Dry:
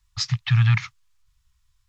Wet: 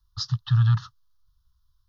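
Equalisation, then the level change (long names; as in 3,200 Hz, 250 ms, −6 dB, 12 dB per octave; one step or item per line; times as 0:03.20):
phaser with its sweep stopped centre 910 Hz, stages 4
phaser with its sweep stopped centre 2,300 Hz, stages 6
0.0 dB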